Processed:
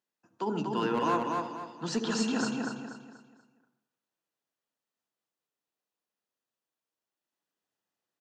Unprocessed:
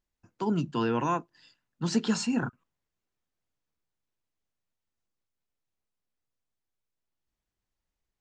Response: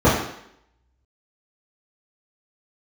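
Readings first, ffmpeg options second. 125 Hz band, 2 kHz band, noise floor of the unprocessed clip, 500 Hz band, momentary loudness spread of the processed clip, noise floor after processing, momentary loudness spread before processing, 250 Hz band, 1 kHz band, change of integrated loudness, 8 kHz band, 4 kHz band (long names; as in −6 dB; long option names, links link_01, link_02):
−6.5 dB, +1.5 dB, below −85 dBFS, +1.0 dB, 12 LU, below −85 dBFS, 7 LU, −2.0 dB, +2.0 dB, −2.0 dB, −0.5 dB, +0.5 dB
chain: -filter_complex "[0:a]highpass=frequency=140:width=0.5412,highpass=frequency=140:width=1.3066,bass=frequency=250:gain=-10,treble=frequency=4000:gain=-3,bandreject=frequency=2200:width=9.6,volume=22dB,asoftclip=hard,volume=-22dB,aecho=1:1:241|482|723|964|1205:0.668|0.234|0.0819|0.0287|0.01,asplit=2[link_01][link_02];[1:a]atrim=start_sample=2205,highshelf=frequency=5200:gain=12,adelay=60[link_03];[link_02][link_03]afir=irnorm=-1:irlink=0,volume=-34dB[link_04];[link_01][link_04]amix=inputs=2:normalize=0"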